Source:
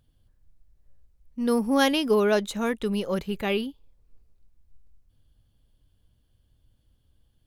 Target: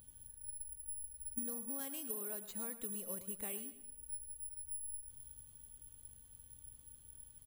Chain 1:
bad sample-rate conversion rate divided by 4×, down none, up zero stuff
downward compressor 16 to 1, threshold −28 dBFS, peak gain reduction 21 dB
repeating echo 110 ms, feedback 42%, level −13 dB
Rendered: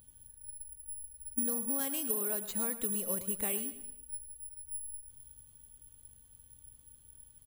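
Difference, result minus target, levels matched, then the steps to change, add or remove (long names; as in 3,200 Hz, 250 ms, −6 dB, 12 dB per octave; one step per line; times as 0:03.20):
downward compressor: peak gain reduction −9 dB
change: downward compressor 16 to 1, threshold −37.5 dBFS, peak gain reduction 30 dB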